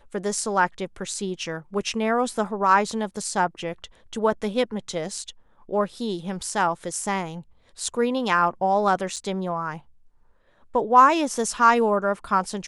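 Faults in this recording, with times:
9.16–9.17 gap 5.8 ms

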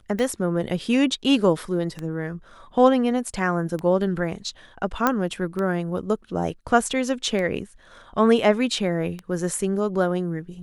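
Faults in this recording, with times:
tick 33 1/3 rpm -17 dBFS
5.07 pop -6 dBFS

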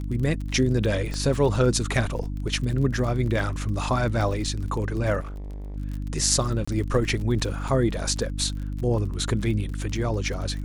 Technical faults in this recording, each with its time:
crackle 36/s -32 dBFS
hum 50 Hz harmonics 6 -30 dBFS
1.14 pop -18 dBFS
5.2–5.77 clipped -32.5 dBFS
6.65–6.67 gap 25 ms
7.68 gap 4.4 ms

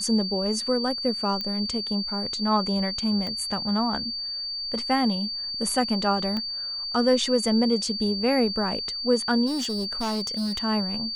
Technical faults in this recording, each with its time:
tone 4600 Hz -29 dBFS
1.41 pop -17 dBFS
3.27 pop -20 dBFS
6.37 pop -18 dBFS
9.46–10.59 clipped -24 dBFS

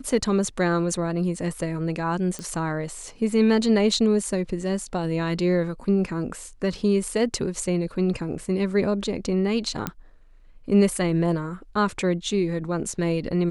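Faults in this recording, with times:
2.39 pop -18 dBFS
9.87 pop -11 dBFS

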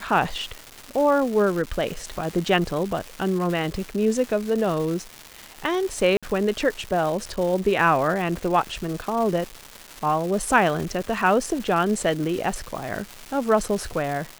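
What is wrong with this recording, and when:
crackle 560/s -29 dBFS
6.17–6.23 gap 56 ms

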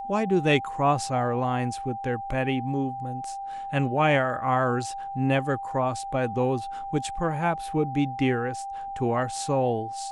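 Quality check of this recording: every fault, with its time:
tone 790 Hz -32 dBFS

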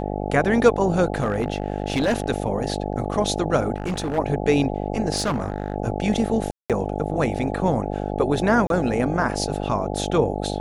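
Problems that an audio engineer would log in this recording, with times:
buzz 50 Hz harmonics 17 -27 dBFS
1.14–2.26 clipped -16 dBFS
3.76–4.19 clipped -21.5 dBFS
5.16–5.74 clipped -18.5 dBFS
6.51–6.7 gap 0.187 s
8.67–8.7 gap 32 ms

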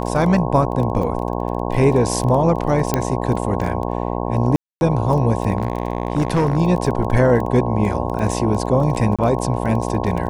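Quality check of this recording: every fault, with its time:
buzz 60 Hz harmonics 18 -23 dBFS
crackle 16/s
2.94 pop -3 dBFS
4.56–4.81 gap 0.251 s
5.57–6.58 clipped -12.5 dBFS
9.16–9.19 gap 26 ms

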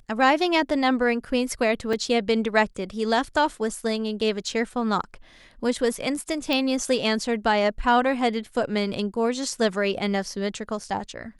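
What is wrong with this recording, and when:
1.93 gap 3.3 ms
6.53 pop

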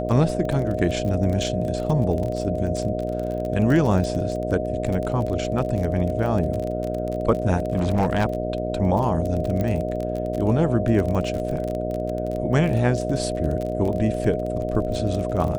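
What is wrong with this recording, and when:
buzz 60 Hz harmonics 12 -28 dBFS
crackle 26/s -26 dBFS
tone 620 Hz -28 dBFS
7.56–8.25 clipped -15.5 dBFS
9.61 pop -14 dBFS

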